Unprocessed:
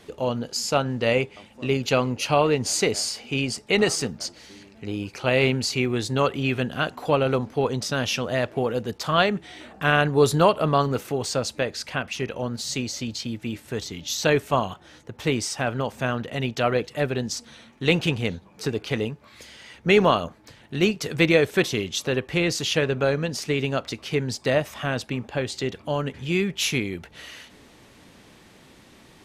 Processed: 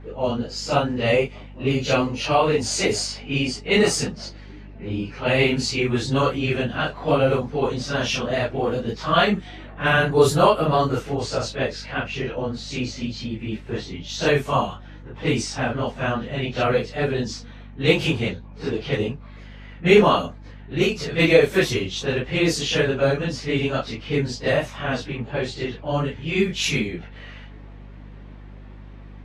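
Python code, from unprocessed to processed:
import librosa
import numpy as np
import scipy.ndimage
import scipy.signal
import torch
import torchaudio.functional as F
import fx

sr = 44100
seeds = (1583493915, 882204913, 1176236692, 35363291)

y = fx.phase_scramble(x, sr, seeds[0], window_ms=100)
y = fx.add_hum(y, sr, base_hz=50, snr_db=18)
y = fx.env_lowpass(y, sr, base_hz=1700.0, full_db=-17.5)
y = y * 10.0 ** (2.0 / 20.0)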